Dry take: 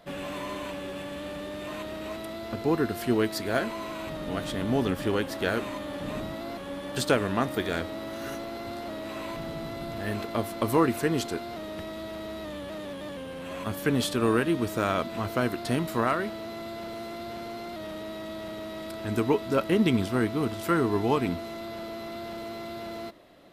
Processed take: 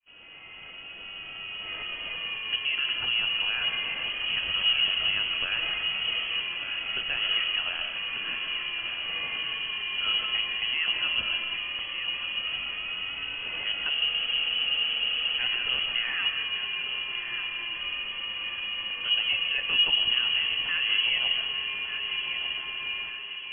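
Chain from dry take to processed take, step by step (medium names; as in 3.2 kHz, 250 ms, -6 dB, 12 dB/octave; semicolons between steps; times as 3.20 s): fade-in on the opening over 2.26 s; peak limiter -21.5 dBFS, peak gain reduction 10 dB; peaking EQ 210 Hz +9.5 dB 0.31 oct; de-hum 159.8 Hz, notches 27; frequency inversion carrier 3.1 kHz; bass shelf 150 Hz +3 dB; on a send: thinning echo 1193 ms, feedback 45%, high-pass 190 Hz, level -8 dB; on the sum: reverberation RT60 0.90 s, pre-delay 95 ms, DRR 5.5 dB; reverse; upward compressor, threshold -40 dBFS; reverse; spectral freeze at 13.96 s, 1.43 s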